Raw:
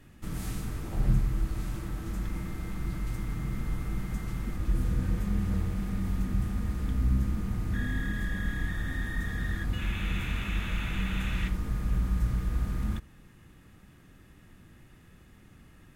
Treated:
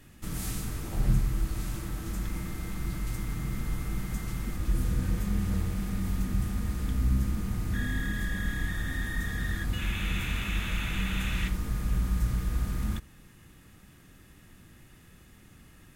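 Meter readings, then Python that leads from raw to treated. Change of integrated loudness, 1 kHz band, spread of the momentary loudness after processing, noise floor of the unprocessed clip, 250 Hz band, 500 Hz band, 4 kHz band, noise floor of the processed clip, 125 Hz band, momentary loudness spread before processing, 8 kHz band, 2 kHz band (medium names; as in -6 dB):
+0.5 dB, +1.0 dB, 7 LU, -55 dBFS, 0.0 dB, 0.0 dB, +4.0 dB, -55 dBFS, 0.0 dB, 7 LU, +7.0 dB, +2.0 dB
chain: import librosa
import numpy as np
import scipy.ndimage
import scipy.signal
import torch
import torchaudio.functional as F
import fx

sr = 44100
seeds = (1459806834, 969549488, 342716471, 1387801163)

y = fx.high_shelf(x, sr, hz=3400.0, db=8.0)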